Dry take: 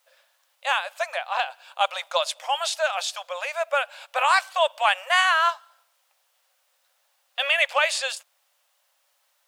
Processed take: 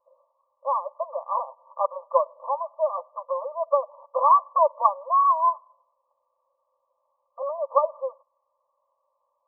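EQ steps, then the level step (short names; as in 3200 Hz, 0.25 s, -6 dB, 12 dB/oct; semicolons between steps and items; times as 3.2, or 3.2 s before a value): brick-wall FIR low-pass 1200 Hz; fixed phaser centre 750 Hz, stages 6; +7.5 dB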